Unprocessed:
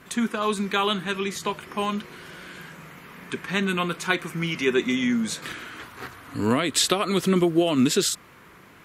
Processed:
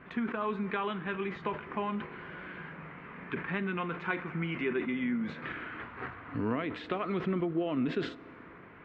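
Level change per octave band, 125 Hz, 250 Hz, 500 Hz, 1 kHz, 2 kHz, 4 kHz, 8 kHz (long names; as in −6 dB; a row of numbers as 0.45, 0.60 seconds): −7.5 dB, −8.5 dB, −9.0 dB, −8.0 dB, −8.0 dB, −20.0 dB, below −40 dB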